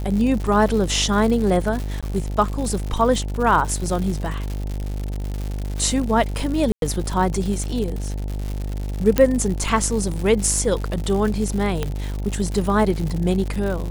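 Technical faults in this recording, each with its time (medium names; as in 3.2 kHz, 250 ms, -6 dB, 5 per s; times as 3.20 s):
buzz 50 Hz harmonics 18 -26 dBFS
crackle 160 per s -26 dBFS
2.01–2.03 s: dropout 16 ms
6.72–6.82 s: dropout 102 ms
9.18 s: pop -4 dBFS
11.83 s: pop -10 dBFS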